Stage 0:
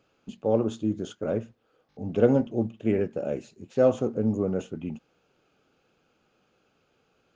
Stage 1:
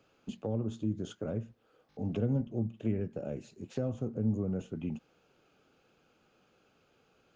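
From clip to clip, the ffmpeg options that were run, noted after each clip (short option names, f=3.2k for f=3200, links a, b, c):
-filter_complex "[0:a]acrossover=split=190[a][b];[b]acompressor=threshold=-36dB:ratio=10[c];[a][c]amix=inputs=2:normalize=0"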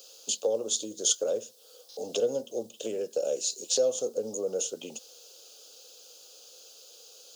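-af "highpass=f=500:t=q:w=4.9,aexciter=amount=12.8:drive=9.9:freq=3.5k"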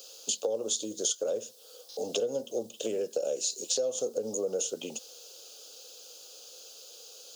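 -af "acompressor=threshold=-29dB:ratio=6,volume=2.5dB"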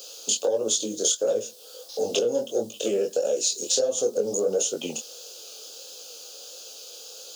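-filter_complex "[0:a]asplit=2[a][b];[b]asoftclip=type=tanh:threshold=-23dB,volume=-7.5dB[c];[a][c]amix=inputs=2:normalize=0,flanger=delay=18:depth=7.4:speed=1.5,volume=7dB"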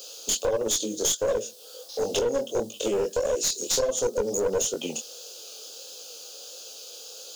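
-af "aeval=exprs='clip(val(0),-1,0.0708)':c=same"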